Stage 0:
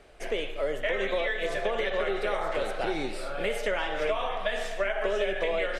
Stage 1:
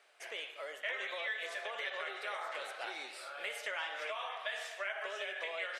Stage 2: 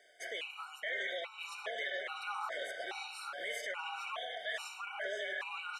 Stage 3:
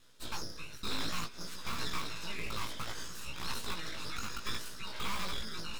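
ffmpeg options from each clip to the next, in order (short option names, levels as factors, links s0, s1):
-af "highpass=1000,volume=0.531"
-af "alimiter=level_in=2.82:limit=0.0631:level=0:latency=1:release=16,volume=0.355,areverse,acompressor=mode=upward:threshold=0.00126:ratio=2.5,areverse,afftfilt=real='re*gt(sin(2*PI*1.2*pts/sr)*(1-2*mod(floor(b*sr/1024/750),2)),0)':imag='im*gt(sin(2*PI*1.2*pts/sr)*(1-2*mod(floor(b*sr/1024/750),2)),0)':win_size=1024:overlap=0.75,volume=1.78"
-filter_complex "[0:a]acrossover=split=800|2000[s0][s1][s2];[s0]acrusher=bits=6:mix=0:aa=0.000001[s3];[s3][s1][s2]amix=inputs=3:normalize=0,aeval=exprs='abs(val(0))':c=same,flanger=delay=16:depth=2.8:speed=0.6,volume=2.37"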